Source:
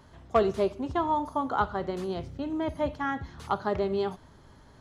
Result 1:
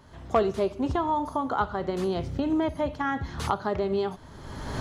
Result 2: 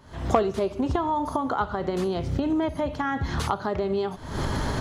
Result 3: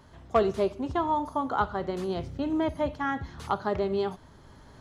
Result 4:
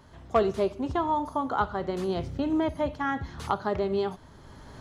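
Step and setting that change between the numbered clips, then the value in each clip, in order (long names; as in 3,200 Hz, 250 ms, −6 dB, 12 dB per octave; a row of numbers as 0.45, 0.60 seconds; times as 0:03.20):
camcorder AGC, rising by: 33, 85, 5, 13 dB per second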